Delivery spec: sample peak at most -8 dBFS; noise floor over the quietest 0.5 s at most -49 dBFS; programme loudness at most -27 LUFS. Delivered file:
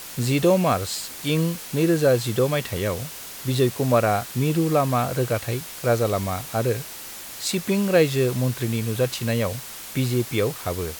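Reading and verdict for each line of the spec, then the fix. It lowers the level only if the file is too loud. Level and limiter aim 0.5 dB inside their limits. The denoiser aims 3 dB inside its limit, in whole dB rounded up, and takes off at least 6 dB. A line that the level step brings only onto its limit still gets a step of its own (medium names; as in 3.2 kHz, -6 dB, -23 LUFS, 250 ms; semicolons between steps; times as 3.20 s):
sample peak -6.5 dBFS: fail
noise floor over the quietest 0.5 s -37 dBFS: fail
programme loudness -23.0 LUFS: fail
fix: noise reduction 11 dB, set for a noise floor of -37 dBFS; trim -4.5 dB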